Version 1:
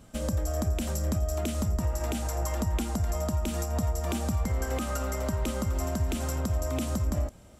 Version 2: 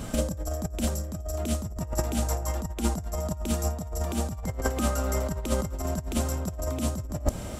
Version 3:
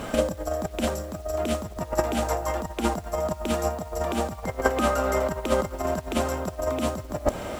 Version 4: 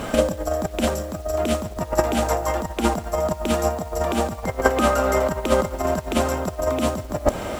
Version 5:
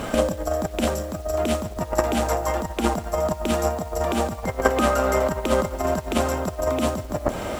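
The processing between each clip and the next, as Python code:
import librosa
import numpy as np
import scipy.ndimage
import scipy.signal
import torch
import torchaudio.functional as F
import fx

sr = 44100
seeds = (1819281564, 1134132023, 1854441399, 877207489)

y1 = fx.dynamic_eq(x, sr, hz=2100.0, q=0.82, threshold_db=-51.0, ratio=4.0, max_db=-4)
y1 = fx.over_compress(y1, sr, threshold_db=-35.0, ratio=-0.5)
y1 = y1 * 10.0 ** (8.5 / 20.0)
y2 = fx.bass_treble(y1, sr, bass_db=-13, treble_db=-12)
y2 = fx.quant_dither(y2, sr, seeds[0], bits=10, dither='none')
y2 = y2 * 10.0 ** (8.5 / 20.0)
y3 = y2 + 10.0 ** (-22.0 / 20.0) * np.pad(y2, (int(145 * sr / 1000.0), 0))[:len(y2)]
y3 = y3 * 10.0 ** (4.5 / 20.0)
y4 = fx.transformer_sat(y3, sr, knee_hz=540.0)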